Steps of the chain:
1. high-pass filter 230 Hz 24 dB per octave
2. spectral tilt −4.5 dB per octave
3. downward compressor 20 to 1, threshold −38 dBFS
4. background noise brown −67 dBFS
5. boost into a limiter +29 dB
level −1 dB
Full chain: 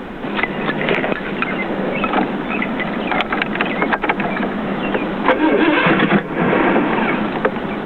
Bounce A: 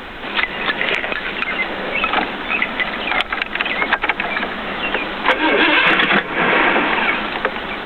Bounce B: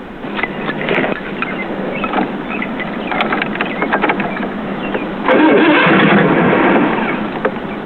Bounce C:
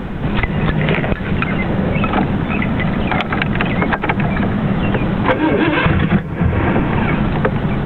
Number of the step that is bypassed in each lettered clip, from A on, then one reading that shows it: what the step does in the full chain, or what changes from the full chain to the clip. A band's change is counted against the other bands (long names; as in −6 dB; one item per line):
2, 4 kHz band +11.0 dB
3, average gain reduction 3.5 dB
1, 125 Hz band +12.5 dB